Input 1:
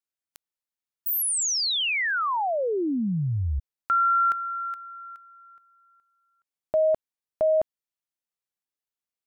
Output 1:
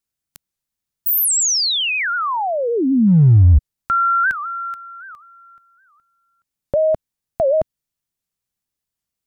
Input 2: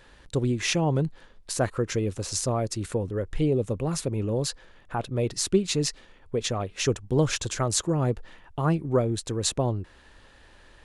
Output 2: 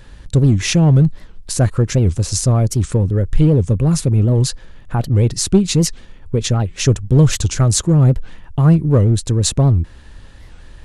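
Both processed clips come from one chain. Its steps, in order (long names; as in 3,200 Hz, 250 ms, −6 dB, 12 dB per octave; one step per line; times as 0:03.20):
bass and treble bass +13 dB, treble +4 dB
in parallel at −5 dB: gain into a clipping stage and back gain 14 dB
on the sum: wow of a warped record 78 rpm, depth 250 cents
level +1 dB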